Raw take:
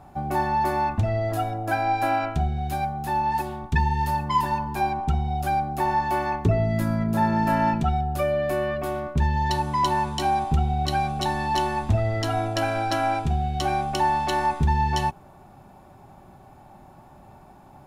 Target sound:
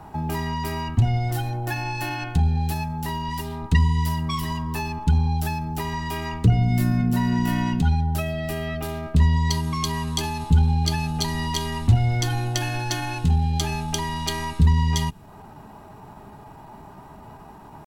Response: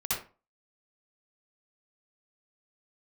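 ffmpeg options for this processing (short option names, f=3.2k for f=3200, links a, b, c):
-filter_complex "[0:a]acrossover=split=230|2100[a][b][c];[b]acompressor=threshold=-39dB:ratio=6[d];[a][d][c]amix=inputs=3:normalize=0,asetrate=48091,aresample=44100,atempo=0.917004,volume=5.5dB"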